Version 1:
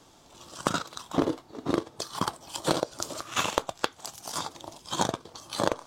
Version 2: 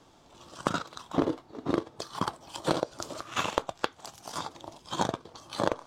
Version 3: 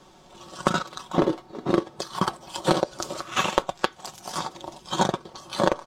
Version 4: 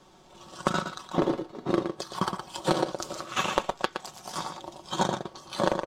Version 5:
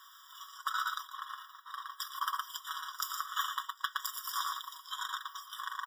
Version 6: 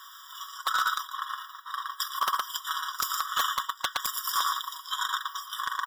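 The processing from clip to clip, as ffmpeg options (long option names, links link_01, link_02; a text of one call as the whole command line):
ffmpeg -i in.wav -af "highshelf=frequency=5300:gain=-10,volume=-1dB" out.wav
ffmpeg -i in.wav -af "aecho=1:1:5.4:0.56,volume=5dB" out.wav
ffmpeg -i in.wav -filter_complex "[0:a]asplit=2[link_01][link_02];[link_02]adelay=116.6,volume=-7dB,highshelf=frequency=4000:gain=-2.62[link_03];[link_01][link_03]amix=inputs=2:normalize=0,volume=-4dB" out.wav
ffmpeg -i in.wav -af "areverse,acompressor=threshold=-34dB:ratio=6,areverse,aexciter=amount=8.7:drive=6:freq=12000,afftfilt=real='re*eq(mod(floor(b*sr/1024/970),2),1)':imag='im*eq(mod(floor(b*sr/1024/970),2),1)':win_size=1024:overlap=0.75,volume=6.5dB" out.wav
ffmpeg -i in.wav -af "aeval=exprs='0.0501*(abs(mod(val(0)/0.0501+3,4)-2)-1)':channel_layout=same,volume=8.5dB" out.wav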